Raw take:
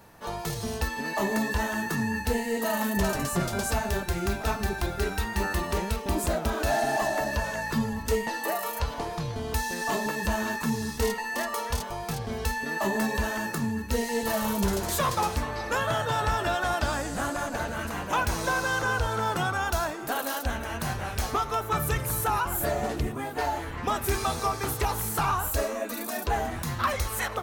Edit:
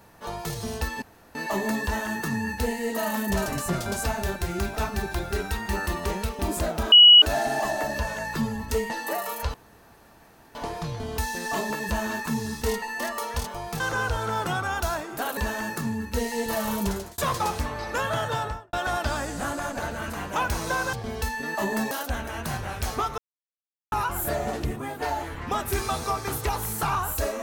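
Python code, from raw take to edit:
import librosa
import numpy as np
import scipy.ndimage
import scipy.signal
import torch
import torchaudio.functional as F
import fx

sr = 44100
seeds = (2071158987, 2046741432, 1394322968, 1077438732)

y = fx.studio_fade_out(x, sr, start_s=16.09, length_s=0.41)
y = fx.edit(y, sr, fx.insert_room_tone(at_s=1.02, length_s=0.33),
    fx.insert_tone(at_s=6.59, length_s=0.3, hz=2920.0, db=-8.0),
    fx.insert_room_tone(at_s=8.91, length_s=1.01),
    fx.swap(start_s=12.16, length_s=0.98, other_s=18.7, other_length_s=1.57),
    fx.fade_out_span(start_s=14.61, length_s=0.34),
    fx.silence(start_s=21.54, length_s=0.74), tone=tone)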